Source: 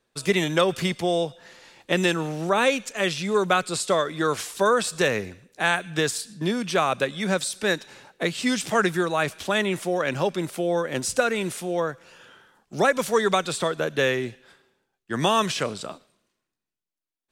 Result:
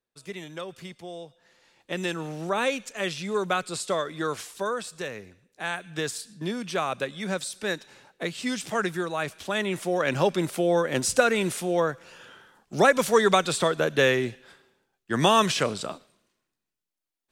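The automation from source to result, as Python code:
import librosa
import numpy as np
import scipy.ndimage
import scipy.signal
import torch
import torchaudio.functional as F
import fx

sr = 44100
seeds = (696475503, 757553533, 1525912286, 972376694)

y = fx.gain(x, sr, db=fx.line((1.24, -16.0), (2.32, -5.0), (4.24, -5.0), (5.15, -13.0), (6.11, -5.5), (9.43, -5.5), (10.21, 1.5)))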